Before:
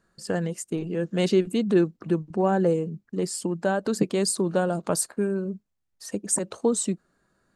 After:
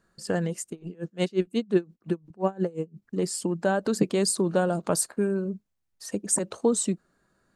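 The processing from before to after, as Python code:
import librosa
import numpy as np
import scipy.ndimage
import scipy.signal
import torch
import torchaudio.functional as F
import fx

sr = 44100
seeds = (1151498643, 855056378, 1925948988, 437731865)

y = fx.tremolo_db(x, sr, hz=5.7, depth_db=27, at=(0.69, 3.01), fade=0.02)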